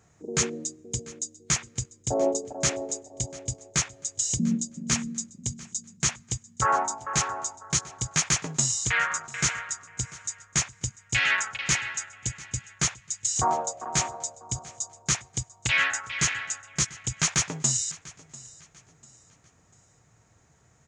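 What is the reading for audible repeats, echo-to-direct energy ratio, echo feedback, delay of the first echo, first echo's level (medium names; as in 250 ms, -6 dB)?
2, -19.5 dB, 35%, 694 ms, -20.0 dB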